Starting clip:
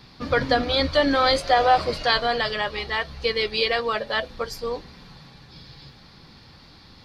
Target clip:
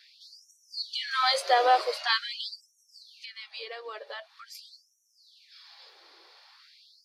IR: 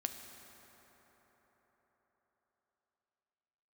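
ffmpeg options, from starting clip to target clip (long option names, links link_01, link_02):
-filter_complex "[0:a]asettb=1/sr,asplit=3[link_01][link_02][link_03];[link_01]atrim=end=1.114[link_04];[link_02]atrim=start=1.11:end=2.01,asetpts=PTS-STARTPTS,afade=type=in:duration=0.004:curve=qsin,afade=type=out:start_time=0.896:duration=0.004:curve=qsin,highshelf=frequency=9500:gain=10.5[link_05];[link_03]atrim=start=2.006[link_06];[link_04][link_05]acrossfade=duration=0.004:curve1=hsin:curve2=qsin[link_07];[link_07][link_06]acrossfade=duration=0.004:curve1=qsin:curve2=hsin,asettb=1/sr,asplit=3[link_08][link_09][link_10];[link_08]atrim=end=3.154[link_11];[link_09]atrim=start=3.15:end=4.55,asetpts=PTS-STARTPTS,afade=type=in:duration=0.004:curve=qsin,afade=type=out:start_time=1.396:duration=0.004:curve=qsin,acrossover=split=180[link_12][link_13];[link_13]acompressor=threshold=-35dB:ratio=4[link_14];[link_12][link_14]amix=inputs=2:normalize=0[link_15];[link_10]atrim=start=4.546[link_16];[link_11][link_15]acrossfade=duration=0.004:curve1=hsin:curve2=qsin[link_17];[link_17][link_16]acrossfade=duration=0.004:curve1=qsin:curve2=hsin,afftfilt=real='re*gte(b*sr/1024,300*pow(5600/300,0.5+0.5*sin(2*PI*0.45*pts/sr)))':imag='im*gte(b*sr/1024,300*pow(5600/300,0.5+0.5*sin(2*PI*0.45*pts/sr)))':win_size=1024:overlap=0.75,volume=-4dB"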